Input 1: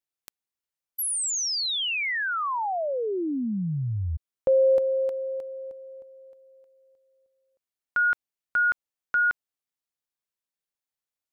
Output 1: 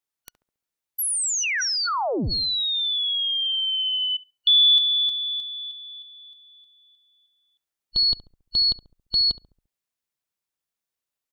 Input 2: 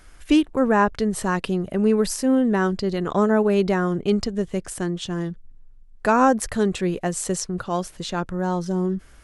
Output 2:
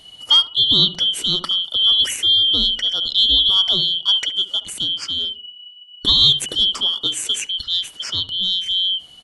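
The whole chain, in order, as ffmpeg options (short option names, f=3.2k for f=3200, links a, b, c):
-filter_complex "[0:a]afftfilt=real='real(if(lt(b,272),68*(eq(floor(b/68),0)*1+eq(floor(b/68),1)*3+eq(floor(b/68),2)*0+eq(floor(b/68),3)*2)+mod(b,68),b),0)':imag='imag(if(lt(b,272),68*(eq(floor(b/68),0)*1+eq(floor(b/68),1)*3+eq(floor(b/68),2)*0+eq(floor(b/68),3)*2)+mod(b,68),b),0)':win_size=2048:overlap=0.75,asplit=2[a][b];[b]adelay=69,lowpass=f=950:p=1,volume=-11dB,asplit=2[c][d];[d]adelay=69,lowpass=f=950:p=1,volume=0.47,asplit=2[e][f];[f]adelay=69,lowpass=f=950:p=1,volume=0.47,asplit=2[g][h];[h]adelay=69,lowpass=f=950:p=1,volume=0.47,asplit=2[i][j];[j]adelay=69,lowpass=f=950:p=1,volume=0.47[k];[a][c][e][g][i][k]amix=inputs=6:normalize=0,volume=3dB"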